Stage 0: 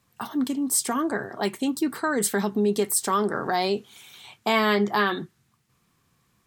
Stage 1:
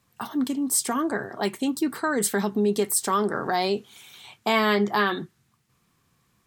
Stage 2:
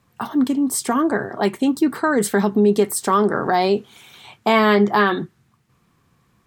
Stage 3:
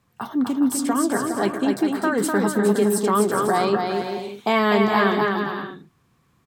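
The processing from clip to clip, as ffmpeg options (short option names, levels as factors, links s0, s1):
-af anull
-af "highshelf=f=2700:g=-9,volume=2.37"
-af "aecho=1:1:250|412.5|518.1|586.8|631.4:0.631|0.398|0.251|0.158|0.1,volume=0.631"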